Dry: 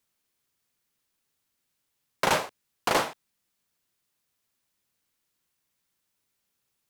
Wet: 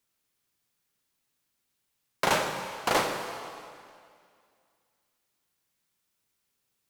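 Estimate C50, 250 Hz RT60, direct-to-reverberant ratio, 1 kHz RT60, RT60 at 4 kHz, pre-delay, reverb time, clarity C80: 5.0 dB, 2.2 s, 3.5 dB, 2.2 s, 2.0 s, 10 ms, 2.2 s, 6.0 dB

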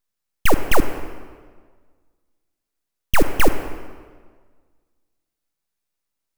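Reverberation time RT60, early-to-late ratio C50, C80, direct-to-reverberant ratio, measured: 1.6 s, 10.0 dB, 11.0 dB, 9.5 dB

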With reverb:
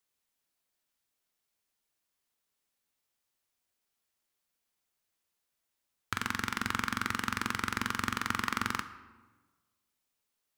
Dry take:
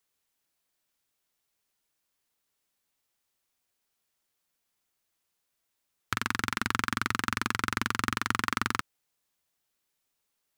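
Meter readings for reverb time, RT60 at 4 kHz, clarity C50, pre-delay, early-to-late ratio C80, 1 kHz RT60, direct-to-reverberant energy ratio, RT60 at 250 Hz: 1.3 s, 0.80 s, 12.5 dB, 3 ms, 14.0 dB, 1.3 s, 10.0 dB, 1.4 s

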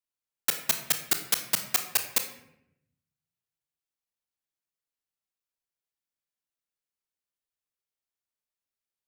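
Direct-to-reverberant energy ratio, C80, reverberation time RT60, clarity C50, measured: 6.0 dB, 11.5 dB, 0.75 s, 9.0 dB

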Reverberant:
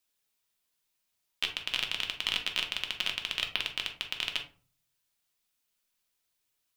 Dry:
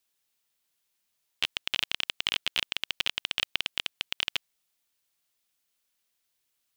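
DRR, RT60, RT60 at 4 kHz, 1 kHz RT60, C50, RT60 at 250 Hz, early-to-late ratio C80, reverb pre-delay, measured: 2.5 dB, 0.40 s, 0.25 s, 0.40 s, 10.0 dB, 0.55 s, 15.5 dB, 3 ms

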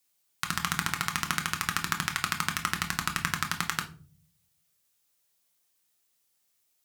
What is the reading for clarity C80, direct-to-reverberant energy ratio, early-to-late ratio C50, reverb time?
18.5 dB, 3.5 dB, 12.5 dB, 0.40 s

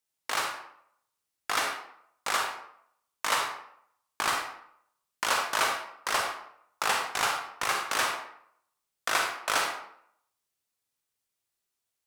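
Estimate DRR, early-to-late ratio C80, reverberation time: 2.0 dB, 7.5 dB, 0.70 s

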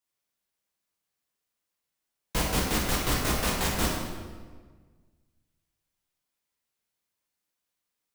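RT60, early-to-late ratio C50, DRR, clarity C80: 1.5 s, 1.0 dB, −3.5 dB, 3.0 dB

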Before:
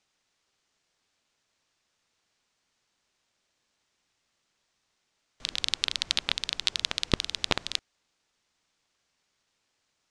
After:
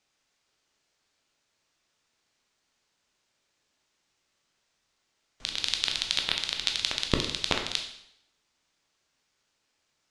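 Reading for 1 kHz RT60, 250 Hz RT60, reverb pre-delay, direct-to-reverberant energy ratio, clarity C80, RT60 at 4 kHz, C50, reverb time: 0.75 s, 0.80 s, 7 ms, 2.5 dB, 9.5 dB, 0.70 s, 7.0 dB, 0.75 s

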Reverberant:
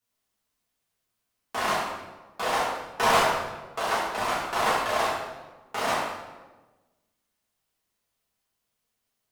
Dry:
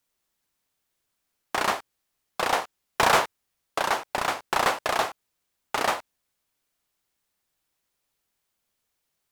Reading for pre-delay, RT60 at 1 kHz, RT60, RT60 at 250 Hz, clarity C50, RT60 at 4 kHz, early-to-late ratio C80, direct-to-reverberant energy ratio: 3 ms, 1.1 s, 1.2 s, 1.5 s, 0.5 dB, 0.85 s, 3.0 dB, −9.0 dB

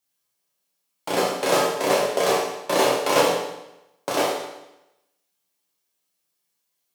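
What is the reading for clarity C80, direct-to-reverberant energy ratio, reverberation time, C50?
4.5 dB, −5.5 dB, 0.90 s, 1.5 dB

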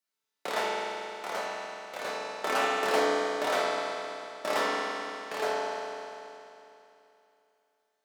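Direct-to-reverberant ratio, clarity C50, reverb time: −7.5 dB, −3.0 dB, 2.9 s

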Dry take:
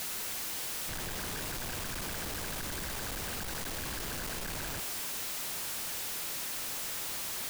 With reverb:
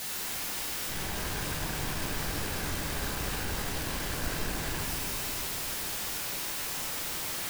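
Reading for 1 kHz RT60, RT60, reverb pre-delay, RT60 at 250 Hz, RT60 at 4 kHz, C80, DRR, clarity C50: 2.5 s, 2.7 s, 14 ms, 3.8 s, 1.4 s, 1.5 dB, −3.5 dB, 0.0 dB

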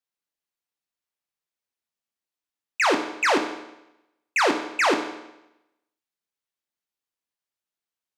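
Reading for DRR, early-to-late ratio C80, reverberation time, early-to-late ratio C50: 4.0 dB, 10.5 dB, 0.90 s, 8.0 dB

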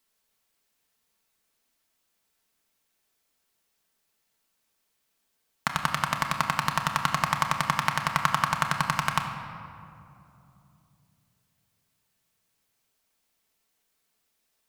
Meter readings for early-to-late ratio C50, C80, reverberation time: 5.5 dB, 7.0 dB, 2.9 s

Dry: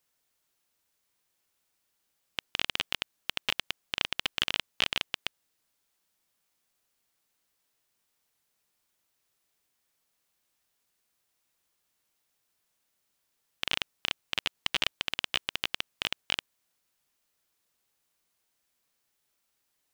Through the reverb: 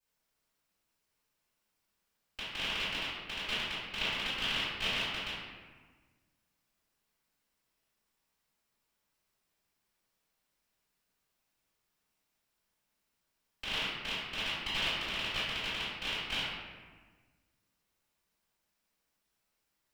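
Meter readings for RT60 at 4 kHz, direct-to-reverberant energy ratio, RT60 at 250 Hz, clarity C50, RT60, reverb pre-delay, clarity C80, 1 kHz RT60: 0.90 s, −14.0 dB, 1.8 s, −2.5 dB, 1.4 s, 3 ms, 1.0 dB, 1.4 s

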